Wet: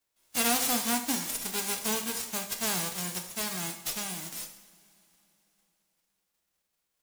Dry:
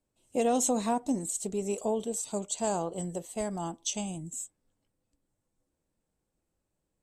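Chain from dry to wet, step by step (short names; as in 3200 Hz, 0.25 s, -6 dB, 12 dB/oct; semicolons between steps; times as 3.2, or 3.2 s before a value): spectral whitening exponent 0.1; two-slope reverb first 0.66 s, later 3.4 s, from -18 dB, DRR 5 dB; gain -1 dB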